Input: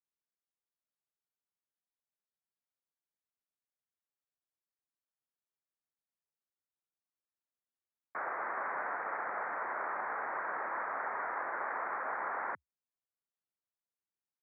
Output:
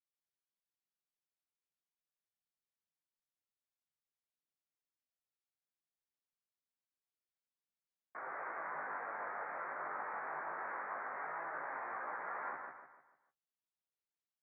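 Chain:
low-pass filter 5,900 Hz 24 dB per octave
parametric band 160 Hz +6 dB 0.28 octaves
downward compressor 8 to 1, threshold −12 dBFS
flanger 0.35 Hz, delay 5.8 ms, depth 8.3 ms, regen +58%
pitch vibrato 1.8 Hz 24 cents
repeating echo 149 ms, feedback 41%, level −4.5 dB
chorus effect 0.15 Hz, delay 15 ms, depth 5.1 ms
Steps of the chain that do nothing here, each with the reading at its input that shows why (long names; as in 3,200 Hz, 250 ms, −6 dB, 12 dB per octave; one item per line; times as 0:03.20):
low-pass filter 5,900 Hz: nothing at its input above 2,600 Hz
downward compressor, threshold −12 dBFS: peak of its input −25.0 dBFS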